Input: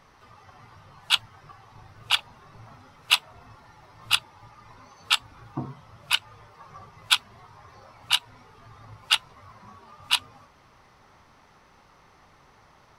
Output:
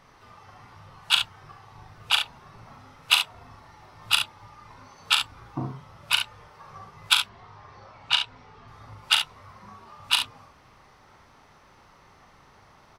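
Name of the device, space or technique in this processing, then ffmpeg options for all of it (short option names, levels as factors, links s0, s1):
slapback doubling: -filter_complex "[0:a]asettb=1/sr,asplit=3[s0][s1][s2];[s0]atrim=end=7.224[s3];[s1]atrim=start=7.22:end=8.68,asetpts=PTS-STARTPTS,afade=t=in:d=0.004:c=qsin,afade=t=out:st=1.456:d=0.004:c=qsin,lowpass=5300[s4];[s2]atrim=start=8.676[s5];[s3][s4]acrossfade=d=0.004:c1=hsin:c2=qsin[s6];[s6][s5]acrossfade=d=0.004:c1=qsin:c2=hsin,asplit=3[s7][s8][s9];[s8]adelay=39,volume=0.473[s10];[s9]adelay=69,volume=0.398[s11];[s7][s10][s11]amix=inputs=3:normalize=0"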